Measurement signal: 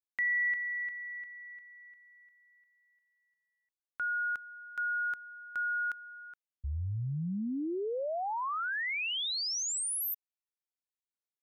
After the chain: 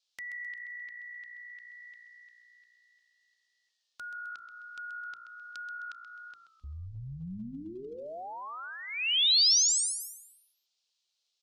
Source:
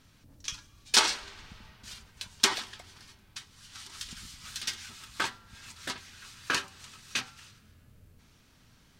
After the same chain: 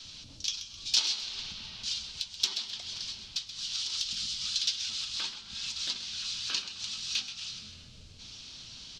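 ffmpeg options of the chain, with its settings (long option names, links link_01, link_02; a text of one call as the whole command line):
ffmpeg -i in.wav -filter_complex "[0:a]lowpass=frequency=5100:width=0.5412,lowpass=frequency=5100:width=1.3066,bandreject=frequency=50:width_type=h:width=6,bandreject=frequency=100:width_type=h:width=6,bandreject=frequency=150:width_type=h:width=6,bandreject=frequency=200:width_type=h:width=6,bandreject=frequency=250:width_type=h:width=6,bandreject=frequency=300:width_type=h:width=6,bandreject=frequency=350:width_type=h:width=6,bandreject=frequency=400:width_type=h:width=6,bandreject=frequency=450:width_type=h:width=6,bandreject=frequency=500:width_type=h:width=6,adynamicequalizer=threshold=0.00158:dfrequency=200:dqfactor=2.1:tfrequency=200:tqfactor=2.1:attack=5:release=100:ratio=0.375:range=3.5:mode=boostabove:tftype=bell,acompressor=threshold=-51dB:ratio=2.5:attack=0.29:release=370:knee=1:detection=peak,aexciter=amount=12:drive=0.9:freq=2800,asplit=2[link_01][link_02];[link_02]asplit=4[link_03][link_04][link_05][link_06];[link_03]adelay=130,afreqshift=-59,volume=-11dB[link_07];[link_04]adelay=260,afreqshift=-118,volume=-19dB[link_08];[link_05]adelay=390,afreqshift=-177,volume=-26.9dB[link_09];[link_06]adelay=520,afreqshift=-236,volume=-34.9dB[link_10];[link_07][link_08][link_09][link_10]amix=inputs=4:normalize=0[link_11];[link_01][link_11]amix=inputs=2:normalize=0,volume=5dB" -ar 44100 -c:a libvorbis -b:a 64k out.ogg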